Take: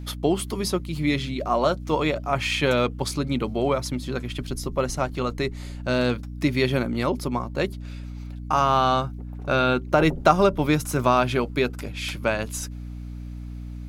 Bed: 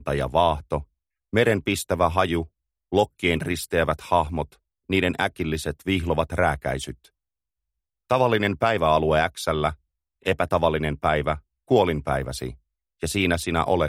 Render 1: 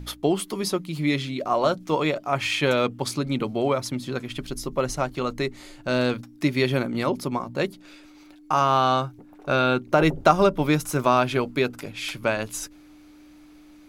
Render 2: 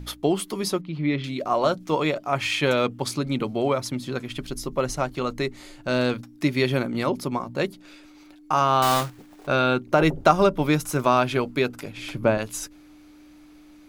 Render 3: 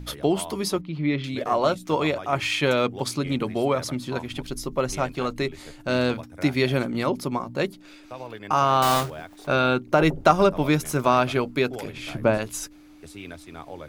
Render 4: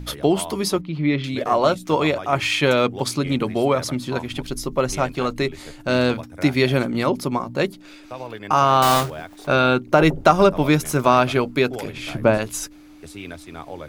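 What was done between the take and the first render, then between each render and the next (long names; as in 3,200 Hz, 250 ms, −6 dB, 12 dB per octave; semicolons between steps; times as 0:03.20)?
hum removal 60 Hz, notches 4
0:00.81–0:01.24: high-frequency loss of the air 300 metres; 0:08.82–0:09.49: one scale factor per block 3 bits; 0:11.97–0:12.38: tilt shelving filter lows +7.5 dB, about 1,100 Hz
mix in bed −18 dB
level +4 dB; brickwall limiter −1 dBFS, peak gain reduction 2 dB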